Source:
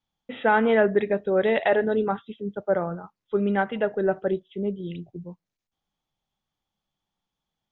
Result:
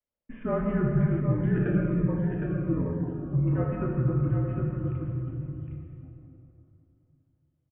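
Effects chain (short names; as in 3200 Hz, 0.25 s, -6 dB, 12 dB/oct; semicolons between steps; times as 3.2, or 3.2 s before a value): HPF 210 Hz 24 dB/oct; bell 1500 Hz -13 dB 2.4 oct; limiter -20 dBFS, peak gain reduction 6.5 dB; echo 0.761 s -5.5 dB; plate-style reverb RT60 3.1 s, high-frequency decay 0.6×, DRR -2 dB; mistuned SSB -260 Hz 270–2400 Hz; 1.2–3.48 cascading phaser falling 1.3 Hz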